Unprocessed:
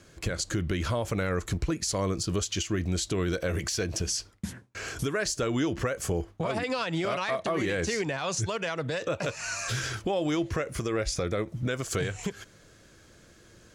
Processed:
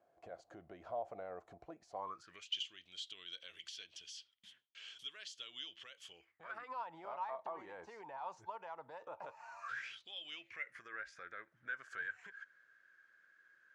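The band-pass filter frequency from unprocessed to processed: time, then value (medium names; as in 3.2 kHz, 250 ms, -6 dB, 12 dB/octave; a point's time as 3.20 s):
band-pass filter, Q 9.5
1.93 s 710 Hz
2.55 s 3.2 kHz
6.08 s 3.2 kHz
6.80 s 890 Hz
9.57 s 890 Hz
10.02 s 3.9 kHz
10.85 s 1.6 kHz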